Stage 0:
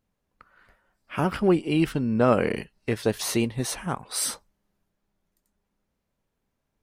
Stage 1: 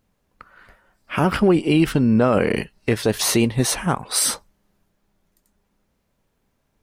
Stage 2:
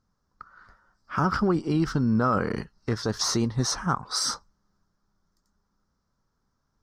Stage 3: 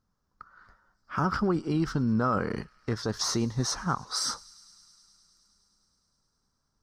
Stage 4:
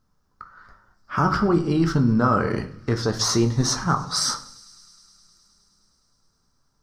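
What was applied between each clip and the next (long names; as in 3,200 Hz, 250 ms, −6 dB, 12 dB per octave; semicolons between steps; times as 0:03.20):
brickwall limiter −17 dBFS, peak gain reduction 9 dB; level +9 dB
drawn EQ curve 140 Hz 0 dB, 630 Hz −7 dB, 1,300 Hz +6 dB, 2,600 Hz −17 dB, 5,400 Hz +6 dB, 10,000 Hz −17 dB; level −4.5 dB
delay with a high-pass on its return 104 ms, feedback 84%, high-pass 2,300 Hz, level −23.5 dB; level −3 dB
rectangular room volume 57 cubic metres, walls mixed, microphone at 0.33 metres; level +6 dB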